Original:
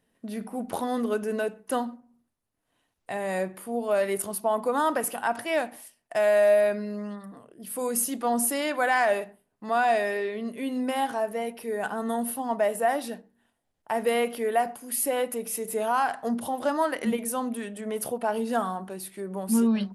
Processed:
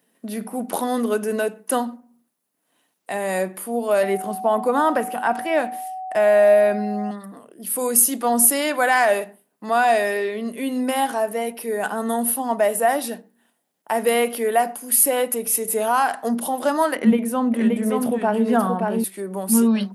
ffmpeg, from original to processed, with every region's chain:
-filter_complex "[0:a]asettb=1/sr,asplit=3[a][b][c];[a]atrim=end=4.034[d];[b]atrim=start=4.03:end=7.11,asetpts=PTS-STARTPTS,afade=t=in:d=0.004:c=qsin,afade=t=out:st=3.076:d=0.004:c=qsin,acrossover=split=2500[e][f];[f]acompressor=threshold=-42dB:ratio=4:attack=1:release=60[g];[e][g]amix=inputs=2:normalize=0,bass=f=250:g=5,treble=f=4k:g=-5,aeval=exprs='val(0)+0.02*sin(2*PI*750*n/s)':c=same[h];[c]atrim=start=7.106[i];[d][h]acrossfade=d=0.004:c1=hsin:c2=qsin[j];[j][i]acrossfade=d=0.004:c1=qsin:c2=hsin,asettb=1/sr,asplit=3[k][l][m];[k]atrim=end=16.964[n];[l]atrim=start=16.96:end=19.04,asetpts=PTS-STARTPTS,afade=t=in:d=0.004:c=qsin,afade=t=out:st=2.076:d=0.004:c=qsin,bass=f=250:g=11,treble=f=4k:g=-14,aecho=1:1:576:0.668,atrim=end_sample=91728[o];[m]atrim=start=19.036[p];[n][o]acrossfade=d=0.004:c1=hsin:c2=qsin[q];[q][p]acrossfade=d=0.004:c1=qsin:c2=hsin,highpass=f=170:w=0.5412,highpass=f=170:w=1.3066,highshelf=f=9.6k:g=11.5,volume=5.5dB"

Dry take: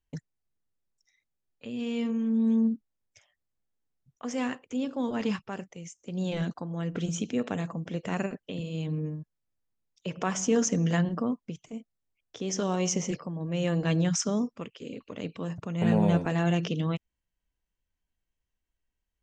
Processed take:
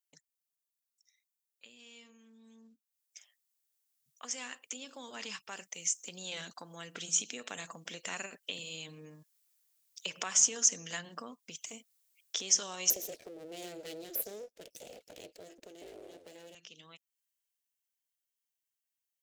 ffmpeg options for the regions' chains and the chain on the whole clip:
-filter_complex "[0:a]asettb=1/sr,asplit=3[a][b][c];[a]atrim=end=12.904[d];[b]atrim=start=12.9:end=16.55,asetpts=PTS-STARTPTS,afade=t=in:d=0.004:c=qsin,afade=t=out:st=3.646:d=0.004:c=qsin,aeval=exprs='abs(val(0))':c=same,lowshelf=f=730:t=q:w=3:g=11[e];[c]atrim=start=16.546[f];[d][e]acrossfade=d=0.004:c1=hsin:c2=qsin[g];[g][f]acrossfade=d=0.004:c1=qsin:c2=hsin,acompressor=threshold=-40dB:ratio=3,aderivative,dynaudnorm=f=280:g=31:m=16dB,volume=3dB"

